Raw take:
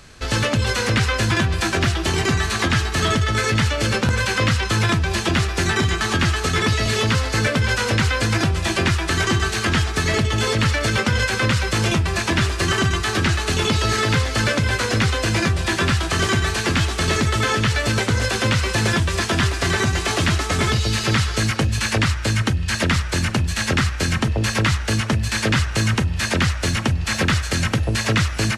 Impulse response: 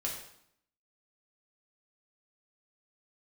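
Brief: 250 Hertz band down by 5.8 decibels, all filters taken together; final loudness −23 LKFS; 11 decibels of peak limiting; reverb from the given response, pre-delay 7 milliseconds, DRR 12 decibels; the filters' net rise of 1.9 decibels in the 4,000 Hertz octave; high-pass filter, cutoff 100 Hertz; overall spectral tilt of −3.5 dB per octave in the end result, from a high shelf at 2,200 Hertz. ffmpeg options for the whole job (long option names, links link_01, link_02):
-filter_complex "[0:a]highpass=100,equalizer=frequency=250:width_type=o:gain=-8,highshelf=frequency=2200:gain=-5.5,equalizer=frequency=4000:width_type=o:gain=7.5,alimiter=limit=-18dB:level=0:latency=1,asplit=2[link_01][link_02];[1:a]atrim=start_sample=2205,adelay=7[link_03];[link_02][link_03]afir=irnorm=-1:irlink=0,volume=-14.5dB[link_04];[link_01][link_04]amix=inputs=2:normalize=0,volume=3dB"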